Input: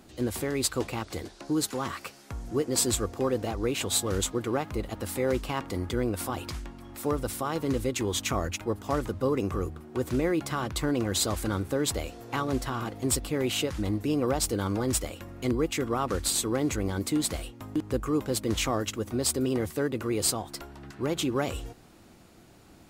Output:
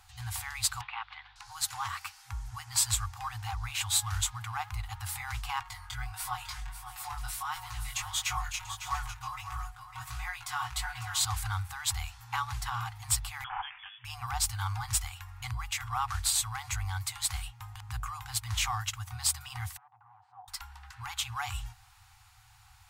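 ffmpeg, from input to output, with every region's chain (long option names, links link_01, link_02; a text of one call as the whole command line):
ffmpeg -i in.wav -filter_complex "[0:a]asettb=1/sr,asplit=3[link_01][link_02][link_03];[link_01]atrim=end=0.814[link_04];[link_02]atrim=start=0.81:end=1.36,asetpts=PTS-STARTPTS,afade=type=in:duration=0.004:curve=qsin,afade=type=out:start_time=0.546:duration=0.004:curve=qsin,asuperpass=centerf=1700:order=8:qfactor=0.64,aeval=exprs='val(0)+0.000794*(sin(2*PI*50*n/s)+sin(2*PI*2*50*n/s)/2+sin(2*PI*3*50*n/s)/3+sin(2*PI*4*50*n/s)/4+sin(2*PI*5*50*n/s)/5)':channel_layout=same[link_05];[link_03]atrim=start=1.356[link_06];[link_04][link_05]acrossfade=duration=0.004:curve1=hsin:curve2=qsin[link_07];[link_07][link_06]acrossfade=duration=0.004:curve1=qsin:curve2=hsin,asettb=1/sr,asplit=3[link_08][link_09][link_10];[link_08]atrim=end=5.634[link_11];[link_09]atrim=start=5.63:end=11.25,asetpts=PTS-STARTPTS,afade=type=in:duration=0.004:curve=qsin,afade=type=out:start_time=5.616:duration=0.004:curve=qsin,aecho=1:1:5.5:0.85,atrim=end_sample=247842,flanger=delay=16:depth=7.6:speed=1.5,aecho=1:1:552|689:0.299|0.15,atrim=end_sample=247842[link_12];[link_10]atrim=start=11.246[link_13];[link_11][link_12]acrossfade=duration=0.004:curve1=hsin:curve2=qsin[link_14];[link_14][link_13]acrossfade=duration=0.004:curve1=qsin:curve2=hsin,asettb=1/sr,asplit=3[link_15][link_16][link_17];[link_15]atrim=end=13.444[link_18];[link_16]atrim=start=13.44:end=14.05,asetpts=PTS-STARTPTS,afade=type=in:duration=0.004:curve=qsin,afade=type=out:start_time=0.606:duration=0.004:curve=qsin,highpass=1100,lowpass=frequency=3100:width_type=q:width=0.5098,lowpass=frequency=3100:width_type=q:width=0.6013,lowpass=frequency=3100:width_type=q:width=0.9,lowpass=frequency=3100:width_type=q:width=2.563,afreqshift=-3700[link_19];[link_17]atrim=start=14.046[link_20];[link_18][link_19]acrossfade=duration=0.004:curve1=hsin:curve2=qsin[link_21];[link_21][link_20]acrossfade=duration=0.004:curve1=qsin:curve2=hsin,asettb=1/sr,asplit=3[link_22][link_23][link_24];[link_22]atrim=end=19.774[link_25];[link_23]atrim=start=19.77:end=20.48,asetpts=PTS-STARTPTS,afade=type=in:duration=0.004:curve=qsin,afade=type=out:start_time=0.706:duration=0.004:curve=qsin,asoftclip=type=hard:threshold=-31dB,asuperpass=centerf=440:order=4:qfactor=1.2[link_26];[link_24]atrim=start=20.476[link_27];[link_25][link_26]acrossfade=duration=0.004:curve1=hsin:curve2=qsin[link_28];[link_28][link_27]acrossfade=duration=0.004:curve1=qsin:curve2=hsin,afftfilt=real='re*(1-between(b*sr/4096,120,730))':imag='im*(1-between(b*sr/4096,120,730))':win_size=4096:overlap=0.75,acontrast=89,volume=-7.5dB" out.wav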